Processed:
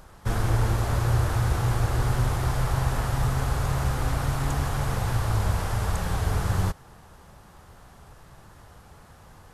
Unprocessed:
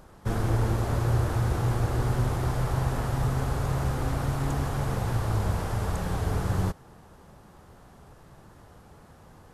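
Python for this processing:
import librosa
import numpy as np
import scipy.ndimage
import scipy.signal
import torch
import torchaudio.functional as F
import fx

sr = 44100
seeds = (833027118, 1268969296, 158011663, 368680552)

y = fx.peak_eq(x, sr, hz=290.0, db=-7.5, octaves=2.6)
y = y * librosa.db_to_amplitude(5.0)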